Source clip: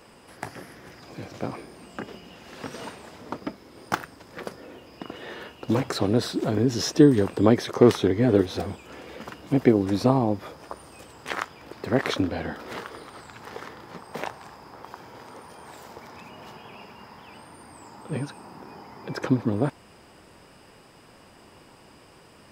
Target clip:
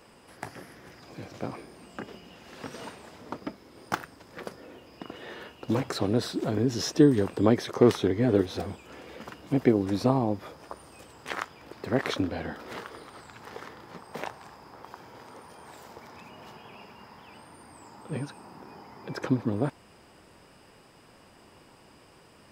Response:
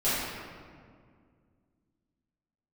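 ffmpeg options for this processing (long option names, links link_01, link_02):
-af "volume=-3.5dB"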